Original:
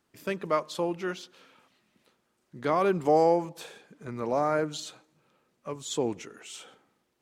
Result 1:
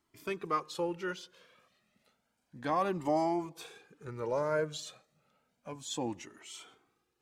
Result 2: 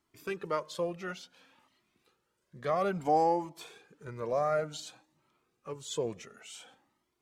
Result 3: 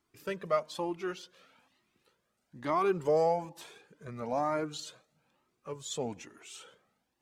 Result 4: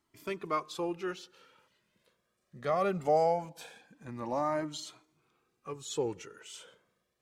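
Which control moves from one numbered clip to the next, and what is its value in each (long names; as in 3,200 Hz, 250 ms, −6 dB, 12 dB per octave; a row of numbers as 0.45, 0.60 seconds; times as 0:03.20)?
flanger whose copies keep moving one way, speed: 0.31, 0.57, 1.1, 0.21 Hertz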